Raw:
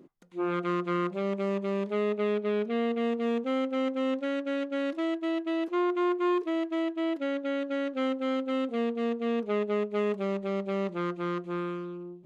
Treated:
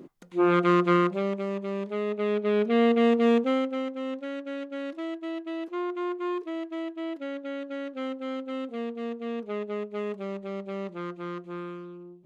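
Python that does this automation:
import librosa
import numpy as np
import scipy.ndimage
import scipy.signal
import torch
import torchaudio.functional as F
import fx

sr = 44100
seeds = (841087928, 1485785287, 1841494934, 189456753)

y = fx.gain(x, sr, db=fx.line((0.92, 8.0), (1.46, -1.5), (2.06, -1.5), (2.83, 7.5), (3.35, 7.5), (3.91, -4.0)))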